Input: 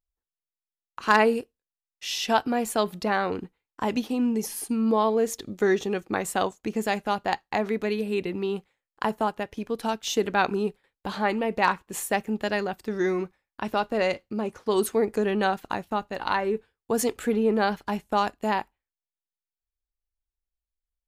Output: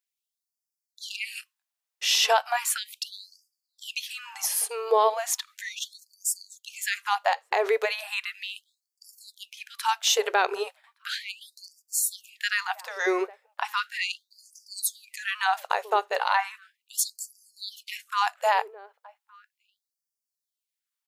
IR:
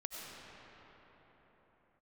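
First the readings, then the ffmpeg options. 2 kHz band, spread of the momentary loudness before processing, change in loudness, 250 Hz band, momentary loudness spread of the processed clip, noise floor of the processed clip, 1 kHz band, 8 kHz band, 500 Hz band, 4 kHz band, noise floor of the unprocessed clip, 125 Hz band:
+0.5 dB, 8 LU, -0.5 dB, under -15 dB, 17 LU, under -85 dBFS, -1.0 dB, +7.5 dB, -5.0 dB, +6.0 dB, under -85 dBFS, under -40 dB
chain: -filter_complex "[0:a]highpass=f=110:w=0.5412,highpass=f=110:w=1.3066,asubboost=boost=2:cutoff=220,alimiter=limit=-17.5dB:level=0:latency=1:release=116,asplit=2[a][b];[b]adelay=1166,volume=-23dB,highshelf=f=4k:g=-26.2[c];[a][c]amix=inputs=2:normalize=0,afftfilt=real='re*gte(b*sr/1024,370*pow(4600/370,0.5+0.5*sin(2*PI*0.36*pts/sr)))':imag='im*gte(b*sr/1024,370*pow(4600/370,0.5+0.5*sin(2*PI*0.36*pts/sr)))':win_size=1024:overlap=0.75,volume=8dB"

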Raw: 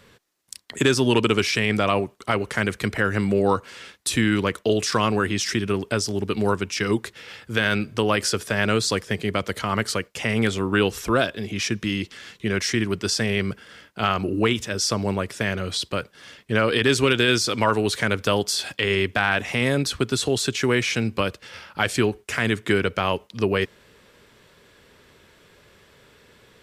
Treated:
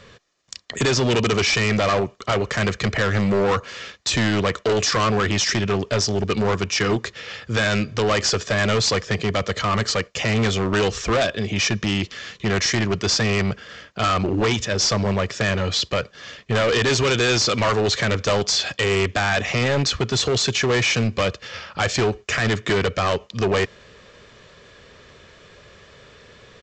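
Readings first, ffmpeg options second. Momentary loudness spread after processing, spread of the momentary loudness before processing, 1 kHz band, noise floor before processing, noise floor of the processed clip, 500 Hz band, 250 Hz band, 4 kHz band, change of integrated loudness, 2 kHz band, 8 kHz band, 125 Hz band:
6 LU, 7 LU, +2.0 dB, -56 dBFS, -50 dBFS, +2.0 dB, 0.0 dB, +3.5 dB, +2.0 dB, +1.5 dB, +3.5 dB, +4.0 dB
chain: -af "aecho=1:1:1.7:0.32,aresample=16000,asoftclip=type=hard:threshold=-22dB,aresample=44100,volume=6dB"

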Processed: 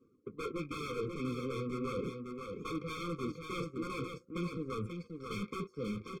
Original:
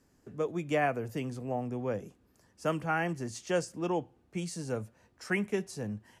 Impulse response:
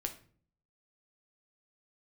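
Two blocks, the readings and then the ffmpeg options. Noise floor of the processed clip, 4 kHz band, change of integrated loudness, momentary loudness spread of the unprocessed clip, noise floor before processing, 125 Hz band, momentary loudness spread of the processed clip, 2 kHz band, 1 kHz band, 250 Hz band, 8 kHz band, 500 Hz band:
-67 dBFS, -1.5 dB, -5.5 dB, 9 LU, -68 dBFS, -4.0 dB, 5 LU, -9.5 dB, -7.0 dB, -3.0 dB, -10.5 dB, -6.5 dB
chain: -filter_complex "[0:a]acrossover=split=2800[a][b];[b]acompressor=threshold=-55dB:ratio=4:attack=1:release=60[c];[a][c]amix=inputs=2:normalize=0,aeval=exprs='(mod(22.4*val(0)+1,2)-1)/22.4':c=same,areverse,acompressor=threshold=-48dB:ratio=5,areverse,flanger=delay=8:depth=8.5:regen=-58:speed=0.4:shape=triangular,asplit=2[d][e];[e]highpass=f=720:p=1,volume=19dB,asoftclip=type=tanh:threshold=-43dB[f];[d][f]amix=inputs=2:normalize=0,lowpass=f=1.6k:p=1,volume=-6dB,afftdn=nr=16:nf=-67,aeval=exprs='0.00708*(cos(1*acos(clip(val(0)/0.00708,-1,1)))-cos(1*PI/2))+0.000794*(cos(7*acos(clip(val(0)/0.00708,-1,1)))-cos(7*PI/2))':c=same,asuperstop=centerf=1500:order=4:qfactor=6.5,aecho=1:1:536:0.531,afftfilt=real='re*eq(mod(floor(b*sr/1024/520),2),0)':imag='im*eq(mod(floor(b*sr/1024/520),2),0)':win_size=1024:overlap=0.75,volume=14.5dB"

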